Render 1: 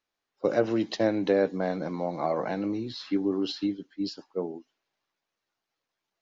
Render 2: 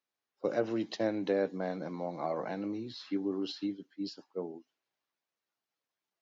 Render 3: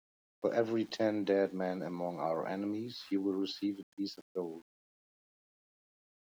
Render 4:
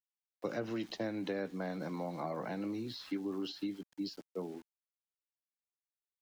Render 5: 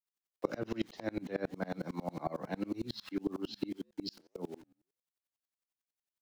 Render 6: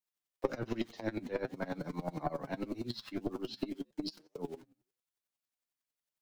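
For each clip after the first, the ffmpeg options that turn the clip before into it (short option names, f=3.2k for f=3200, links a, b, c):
-af "highpass=99,volume=-6.5dB"
-af "aeval=exprs='val(0)*gte(abs(val(0)),0.0015)':c=same"
-filter_complex "[0:a]acrossover=split=270|960[a][b][c];[a]acompressor=threshold=-43dB:ratio=4[d];[b]acompressor=threshold=-45dB:ratio=4[e];[c]acompressor=threshold=-47dB:ratio=4[f];[d][e][f]amix=inputs=3:normalize=0,volume=3dB"
-af "flanger=delay=6.8:depth=5.8:regen=-86:speed=1.8:shape=sinusoidal,aeval=exprs='val(0)*pow(10,-30*if(lt(mod(-11*n/s,1),2*abs(-11)/1000),1-mod(-11*n/s,1)/(2*abs(-11)/1000),(mod(-11*n/s,1)-2*abs(-11)/1000)/(1-2*abs(-11)/1000))/20)':c=same,volume=13dB"
-af "aeval=exprs='0.168*(cos(1*acos(clip(val(0)/0.168,-1,1)))-cos(1*PI/2))+0.0188*(cos(4*acos(clip(val(0)/0.168,-1,1)))-cos(4*PI/2))':c=same,flanger=delay=6.3:depth=2.6:regen=38:speed=0.48:shape=triangular,volume=4dB"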